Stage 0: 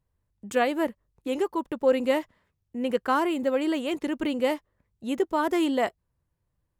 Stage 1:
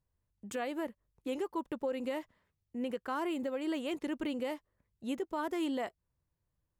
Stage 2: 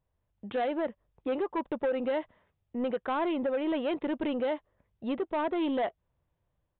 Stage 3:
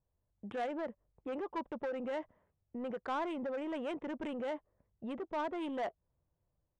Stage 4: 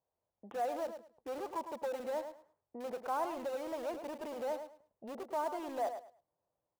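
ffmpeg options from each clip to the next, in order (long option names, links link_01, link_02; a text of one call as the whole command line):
ffmpeg -i in.wav -af "alimiter=limit=-20.5dB:level=0:latency=1:release=215,volume=-6dB" out.wav
ffmpeg -i in.wav -af "equalizer=frequency=660:width_type=o:width=1.1:gain=7,dynaudnorm=framelen=140:gausssize=5:maxgain=3dB,aresample=8000,asoftclip=type=tanh:threshold=-26dB,aresample=44100,volume=2dB" out.wav
ffmpeg -i in.wav -filter_complex "[0:a]acrossover=split=790[link_01][link_02];[link_01]alimiter=level_in=8dB:limit=-24dB:level=0:latency=1:release=15,volume=-8dB[link_03];[link_02]adynamicsmooth=sensitivity=6:basefreq=1600[link_04];[link_03][link_04]amix=inputs=2:normalize=0,volume=-3.5dB" out.wav
ffmpeg -i in.wav -filter_complex "[0:a]bandpass=frequency=740:width_type=q:width=1.4:csg=0,asplit=2[link_01][link_02];[link_02]aeval=exprs='(mod(158*val(0)+1,2)-1)/158':channel_layout=same,volume=-10.5dB[link_03];[link_01][link_03]amix=inputs=2:normalize=0,aecho=1:1:106|212|318:0.355|0.0745|0.0156,volume=3dB" out.wav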